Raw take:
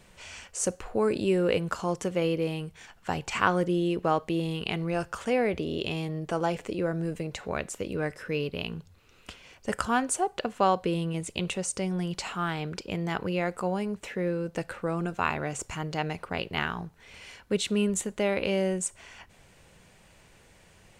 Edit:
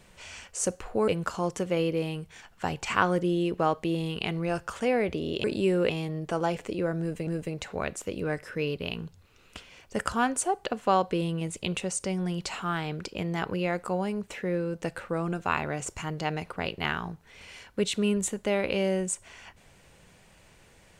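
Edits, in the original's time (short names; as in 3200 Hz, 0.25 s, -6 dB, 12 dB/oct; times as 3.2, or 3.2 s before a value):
1.08–1.53 move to 5.89
7–7.27 loop, 2 plays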